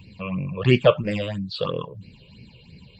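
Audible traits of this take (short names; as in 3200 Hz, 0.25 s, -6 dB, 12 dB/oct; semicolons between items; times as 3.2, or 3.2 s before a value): phasing stages 8, 3 Hz, lowest notch 230–1100 Hz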